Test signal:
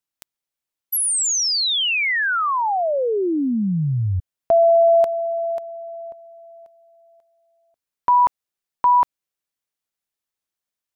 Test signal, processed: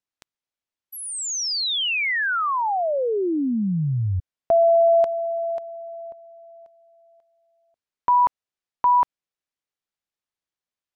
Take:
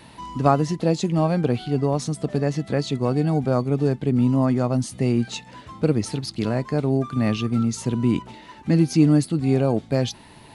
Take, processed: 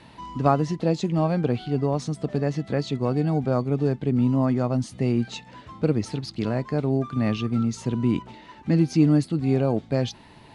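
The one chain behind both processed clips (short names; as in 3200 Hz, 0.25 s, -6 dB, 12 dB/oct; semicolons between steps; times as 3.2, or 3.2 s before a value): air absorption 64 m; gain -2 dB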